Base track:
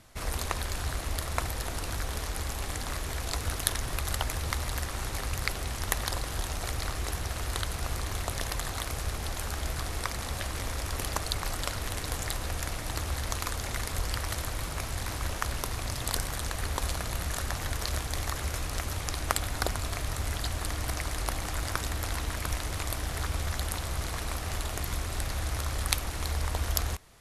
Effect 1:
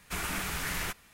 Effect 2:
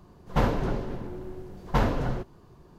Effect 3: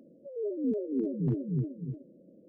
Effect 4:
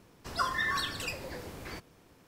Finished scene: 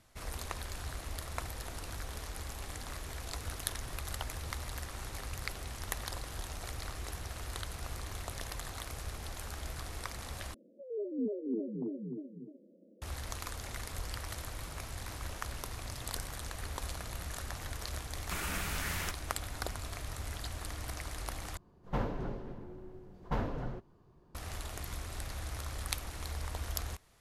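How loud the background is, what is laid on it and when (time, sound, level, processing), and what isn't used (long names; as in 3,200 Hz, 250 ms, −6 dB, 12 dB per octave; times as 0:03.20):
base track −8.5 dB
0:10.54: overwrite with 3 −4 dB + elliptic band-pass filter 200–960 Hz
0:18.19: mix in 1 −4 dB
0:21.57: overwrite with 2 −10 dB + high-shelf EQ 3,000 Hz −6 dB
not used: 4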